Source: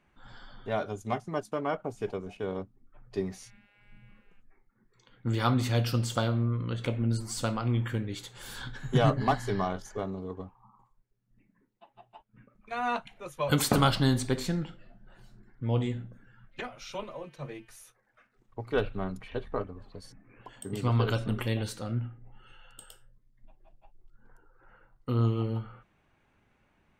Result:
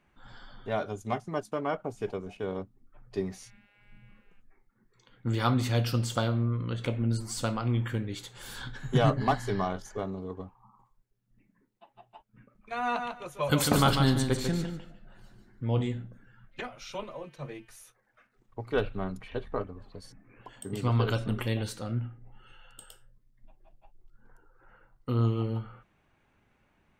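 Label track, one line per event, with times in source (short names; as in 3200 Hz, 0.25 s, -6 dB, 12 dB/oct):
12.810000	15.810000	feedback echo 0.147 s, feedback 18%, level -6 dB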